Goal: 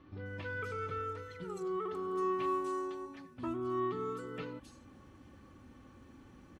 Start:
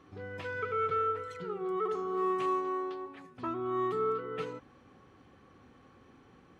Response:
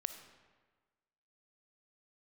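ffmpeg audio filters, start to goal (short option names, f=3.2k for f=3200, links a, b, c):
-filter_complex "[0:a]bass=f=250:g=9,treble=f=4k:g=9,aecho=1:1:3.4:0.43,areverse,acompressor=mode=upward:threshold=-46dB:ratio=2.5,areverse,acrossover=split=4400[a][b];[b]adelay=260[c];[a][c]amix=inputs=2:normalize=0,volume=-4.5dB"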